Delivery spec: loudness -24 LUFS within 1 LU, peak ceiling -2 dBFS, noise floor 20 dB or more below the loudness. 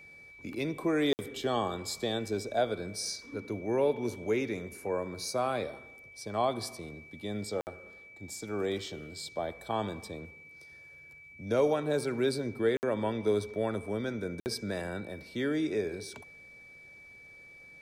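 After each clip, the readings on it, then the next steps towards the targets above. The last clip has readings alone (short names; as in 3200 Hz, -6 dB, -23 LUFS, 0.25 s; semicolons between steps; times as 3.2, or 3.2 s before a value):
dropouts 4; longest dropout 59 ms; steady tone 2300 Hz; tone level -50 dBFS; loudness -33.0 LUFS; peak -15.5 dBFS; loudness target -24.0 LUFS
-> interpolate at 1.13/7.61/12.77/14.4, 59 ms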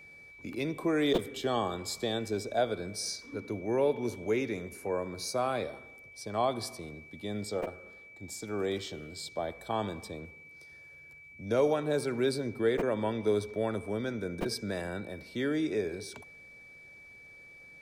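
dropouts 0; steady tone 2300 Hz; tone level -50 dBFS
-> notch 2300 Hz, Q 30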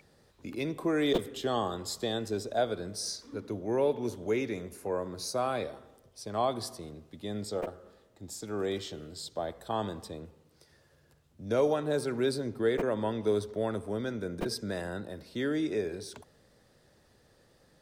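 steady tone none; loudness -33.0 LUFS; peak -15.5 dBFS; loudness target -24.0 LUFS
-> gain +9 dB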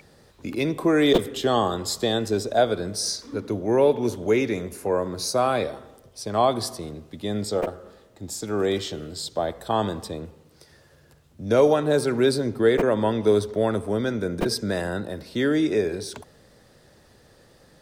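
loudness -24.0 LUFS; peak -6.5 dBFS; noise floor -56 dBFS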